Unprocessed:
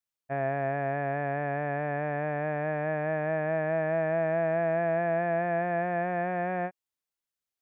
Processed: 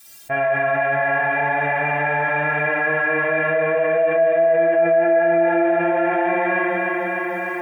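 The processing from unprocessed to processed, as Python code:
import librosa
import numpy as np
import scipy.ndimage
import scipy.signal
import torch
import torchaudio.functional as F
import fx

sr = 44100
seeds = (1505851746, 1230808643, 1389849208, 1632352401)

y = fx.high_shelf(x, sr, hz=2500.0, db=7.5)
y = fx.hum_notches(y, sr, base_hz=60, count=3)
y = fx.stiff_resonator(y, sr, f0_hz=100.0, decay_s=0.37, stiffness=0.03)
y = fx.echo_feedback(y, sr, ms=301, feedback_pct=52, wet_db=-7.5)
y = fx.rev_schroeder(y, sr, rt60_s=0.62, comb_ms=32, drr_db=-1.5)
y = fx.env_flatten(y, sr, amount_pct=70)
y = y * librosa.db_to_amplitude(6.5)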